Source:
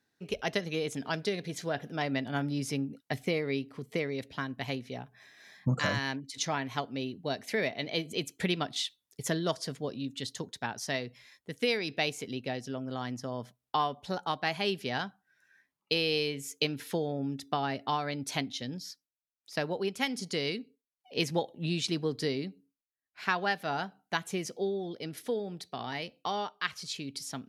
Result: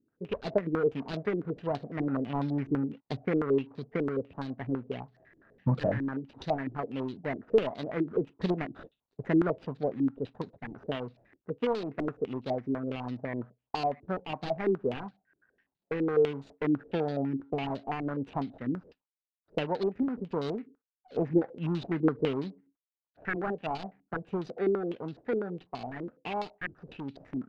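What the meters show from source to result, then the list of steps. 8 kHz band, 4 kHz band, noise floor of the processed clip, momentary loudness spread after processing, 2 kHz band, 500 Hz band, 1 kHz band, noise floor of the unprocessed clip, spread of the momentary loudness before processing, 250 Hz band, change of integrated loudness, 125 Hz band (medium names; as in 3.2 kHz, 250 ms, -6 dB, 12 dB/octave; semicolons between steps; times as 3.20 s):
under -25 dB, -13.0 dB, under -85 dBFS, 12 LU, -6.5 dB, +3.5 dB, -2.0 dB, under -85 dBFS, 8 LU, +4.5 dB, +1.0 dB, +1.5 dB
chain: median filter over 41 samples; step-sequenced low-pass 12 Hz 330–4100 Hz; trim +1.5 dB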